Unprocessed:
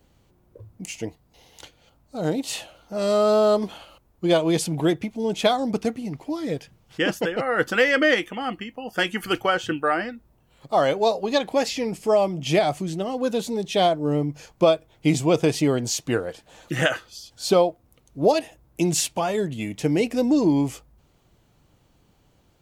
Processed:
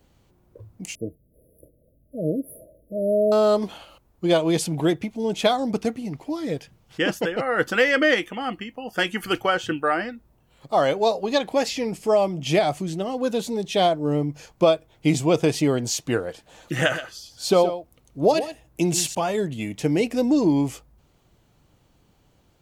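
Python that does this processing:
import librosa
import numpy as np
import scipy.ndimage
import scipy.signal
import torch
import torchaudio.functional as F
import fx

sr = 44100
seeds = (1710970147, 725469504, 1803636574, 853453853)

y = fx.brickwall_bandstop(x, sr, low_hz=670.0, high_hz=9800.0, at=(0.95, 3.32))
y = fx.echo_single(y, sr, ms=125, db=-12.0, at=(16.74, 19.15))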